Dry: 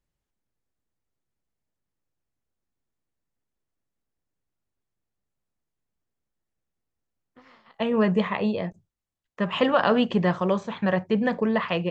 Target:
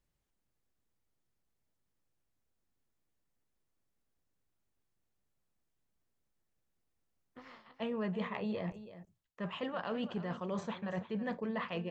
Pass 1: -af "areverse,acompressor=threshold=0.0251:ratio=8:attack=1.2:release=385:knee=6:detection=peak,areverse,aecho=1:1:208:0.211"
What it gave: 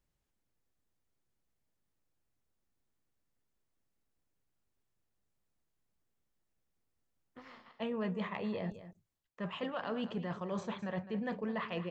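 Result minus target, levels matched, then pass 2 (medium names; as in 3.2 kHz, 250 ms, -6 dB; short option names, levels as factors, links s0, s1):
echo 120 ms early
-af "areverse,acompressor=threshold=0.0251:ratio=8:attack=1.2:release=385:knee=6:detection=peak,areverse,aecho=1:1:328:0.211"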